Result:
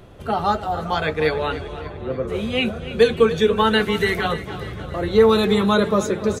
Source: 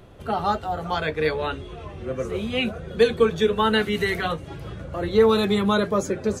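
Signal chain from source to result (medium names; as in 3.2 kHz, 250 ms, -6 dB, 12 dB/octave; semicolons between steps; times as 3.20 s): 1.80–2.27 s: low-pass 2.3 kHz -> 1.4 kHz 12 dB/octave; feedback delay 293 ms, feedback 57%, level -14 dB; trim +3 dB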